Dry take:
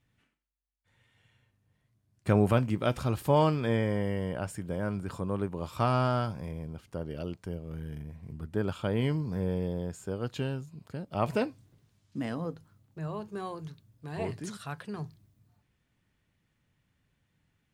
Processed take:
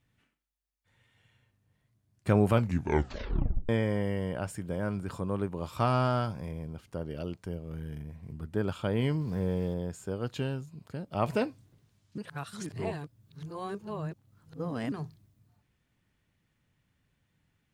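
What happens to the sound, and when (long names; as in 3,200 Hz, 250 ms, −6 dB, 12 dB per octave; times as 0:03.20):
0:02.53: tape stop 1.16 s
0:09.21–0:09.74: converter with a step at zero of −48 dBFS
0:12.18–0:14.92: reverse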